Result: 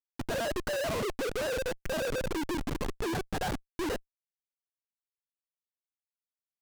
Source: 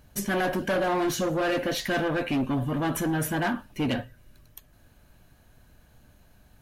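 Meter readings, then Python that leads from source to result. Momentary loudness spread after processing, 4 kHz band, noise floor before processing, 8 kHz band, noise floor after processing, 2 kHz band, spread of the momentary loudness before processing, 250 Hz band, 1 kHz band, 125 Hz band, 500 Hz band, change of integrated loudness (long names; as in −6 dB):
4 LU, −4.5 dB, −59 dBFS, −6.0 dB, below −85 dBFS, −6.5 dB, 4 LU, −9.5 dB, −7.5 dB, −9.0 dB, −4.0 dB, −6.5 dB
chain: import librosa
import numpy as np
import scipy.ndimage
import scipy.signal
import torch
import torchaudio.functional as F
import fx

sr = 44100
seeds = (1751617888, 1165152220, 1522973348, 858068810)

y = fx.sine_speech(x, sr)
y = fx.schmitt(y, sr, flips_db=-25.5)
y = fx.doppler_dist(y, sr, depth_ms=0.38)
y = F.gain(torch.from_numpy(y), -2.0).numpy()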